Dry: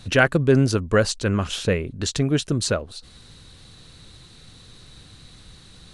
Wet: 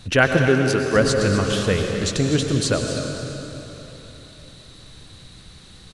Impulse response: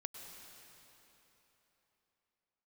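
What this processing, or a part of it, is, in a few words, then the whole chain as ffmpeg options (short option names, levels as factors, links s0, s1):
cave: -filter_complex "[0:a]aecho=1:1:251:0.282[s0];[1:a]atrim=start_sample=2205[s1];[s0][s1]afir=irnorm=-1:irlink=0,asettb=1/sr,asplit=3[s2][s3][s4];[s2]atrim=end=0.484[s5];[s3]atrim=start=0.48:end=0.96,asetpts=PTS-STARTPTS,afade=t=in:d=0.004:c=qsin,afade=t=out:st=0.476:d=0.004:c=qsin,highpass=f=250:p=1[s6];[s4]atrim=start=0.956[s7];[s5][s6]acrossfade=d=0.004:c1=hsin:c2=qsin[s8];[s8][s7]acrossfade=d=0.004:c1=qsin:c2=hsin,volume=1.78"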